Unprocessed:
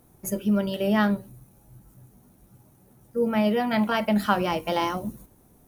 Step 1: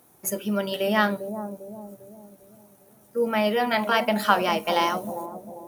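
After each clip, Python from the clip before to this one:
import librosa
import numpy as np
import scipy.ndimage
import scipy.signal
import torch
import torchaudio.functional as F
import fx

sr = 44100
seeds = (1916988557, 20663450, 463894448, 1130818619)

y = fx.highpass(x, sr, hz=600.0, slope=6)
y = fx.echo_bbd(y, sr, ms=399, stages=2048, feedback_pct=46, wet_db=-8.5)
y = F.gain(torch.from_numpy(y), 5.0).numpy()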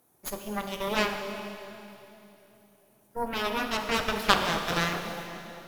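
y = fx.cheby_harmonics(x, sr, harmonics=(3, 6), levels_db=(-7, -17), full_scale_db=-5.5)
y = fx.rev_schroeder(y, sr, rt60_s=2.8, comb_ms=27, drr_db=5.5)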